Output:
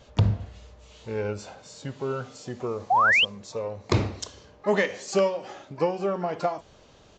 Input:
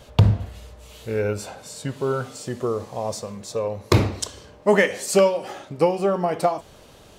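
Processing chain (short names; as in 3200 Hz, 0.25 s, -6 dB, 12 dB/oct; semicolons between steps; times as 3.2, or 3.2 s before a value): harmoniser +12 st -18 dB; downsampling 16000 Hz; painted sound rise, 2.9–3.25, 690–3300 Hz -13 dBFS; gain -6 dB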